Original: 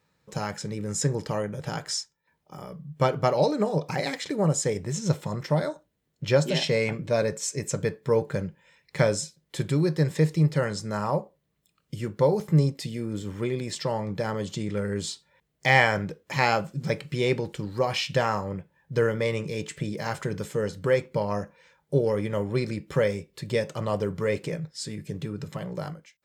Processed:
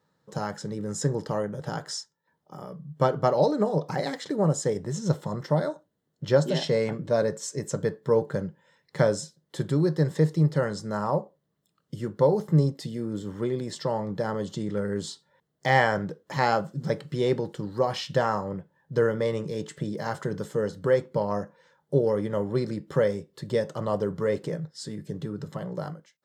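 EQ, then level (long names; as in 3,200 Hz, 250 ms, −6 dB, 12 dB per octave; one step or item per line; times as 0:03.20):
high-pass filter 120 Hz
parametric band 2,400 Hz −14.5 dB 0.36 octaves
high-shelf EQ 4,100 Hz −7.5 dB
+1.0 dB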